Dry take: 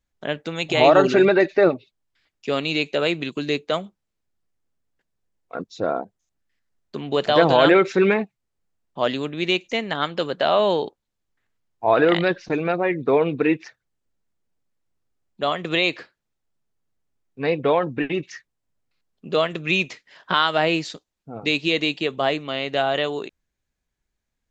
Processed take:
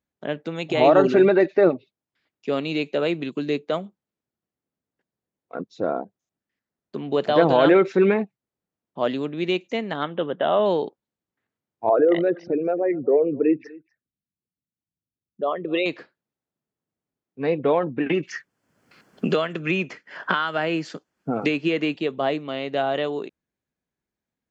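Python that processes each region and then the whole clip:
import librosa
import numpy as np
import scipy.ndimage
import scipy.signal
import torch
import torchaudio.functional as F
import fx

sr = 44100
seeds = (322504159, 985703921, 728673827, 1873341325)

y = fx.chain(x, sr, fx.notch(hz=2400.0, q=6.0),
    fx.resample_bad(factor=6, down='none', up='filtered'), at=(10.03, 10.66))
y = fx.chain(y, sr, fx.envelope_sharpen(power=2.0),
    fx.echo_single(ms=248, db=-23.0), at=(11.89, 15.86))
y = fx.chain(y, sr, fx.peak_eq(hz=1500.0, db=7.5, octaves=0.61),
    fx.notch(hz=3800.0, q=6.7),
    fx.band_squash(depth_pct=100), at=(18.06, 21.95))
y = scipy.signal.sosfilt(scipy.signal.butter(2, 190.0, 'highpass', fs=sr, output='sos'), y)
y = fx.tilt_eq(y, sr, slope=-2.5)
y = y * 10.0 ** (-3.0 / 20.0)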